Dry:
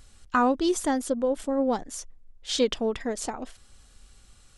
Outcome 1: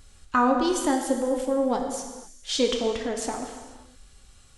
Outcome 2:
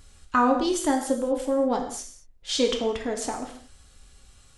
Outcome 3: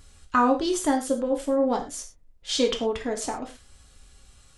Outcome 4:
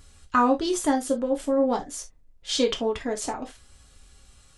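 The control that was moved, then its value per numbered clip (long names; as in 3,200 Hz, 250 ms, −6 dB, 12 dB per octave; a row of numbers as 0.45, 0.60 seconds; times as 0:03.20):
reverb whose tail is shaped and stops, gate: 530, 250, 140, 90 milliseconds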